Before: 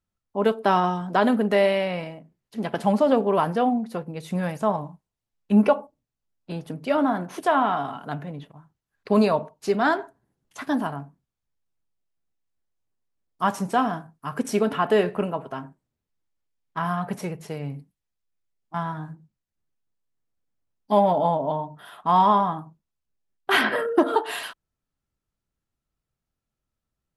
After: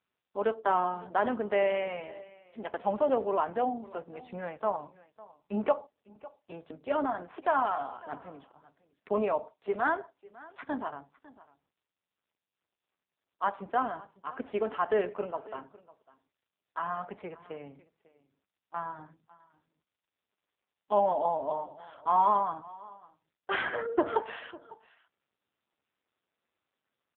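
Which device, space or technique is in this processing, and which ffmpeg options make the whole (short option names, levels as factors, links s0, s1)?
satellite phone: -af "highpass=360,lowpass=3100,aecho=1:1:551:0.0944,volume=0.562" -ar 8000 -c:a libopencore_amrnb -b:a 5900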